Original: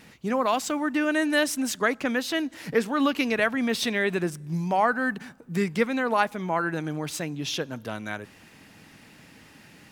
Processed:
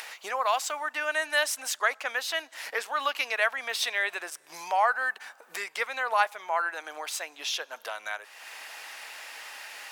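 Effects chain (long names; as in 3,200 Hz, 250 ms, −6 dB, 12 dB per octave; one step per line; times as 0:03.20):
high-pass filter 660 Hz 24 dB per octave
upward compression, threshold −31 dBFS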